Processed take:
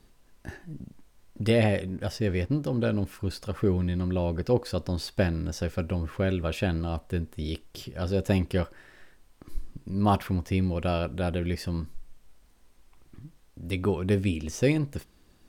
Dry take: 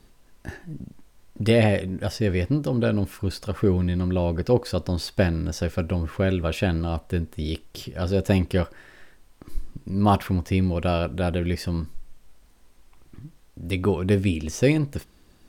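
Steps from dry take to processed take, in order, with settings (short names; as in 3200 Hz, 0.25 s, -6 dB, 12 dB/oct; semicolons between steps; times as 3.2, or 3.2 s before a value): 1.96–3.17 backlash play -50 dBFS; gain -4 dB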